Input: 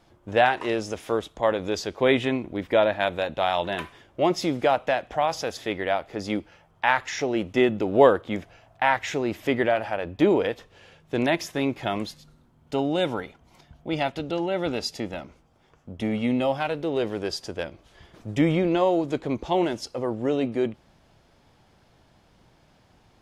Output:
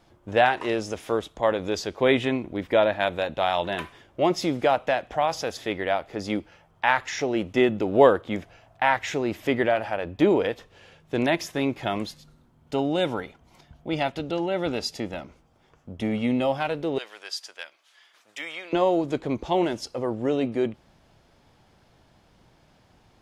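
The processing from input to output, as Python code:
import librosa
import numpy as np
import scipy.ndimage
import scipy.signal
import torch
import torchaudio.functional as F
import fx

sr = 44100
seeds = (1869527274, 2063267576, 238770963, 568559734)

y = fx.highpass(x, sr, hz=1400.0, slope=12, at=(16.98, 18.73))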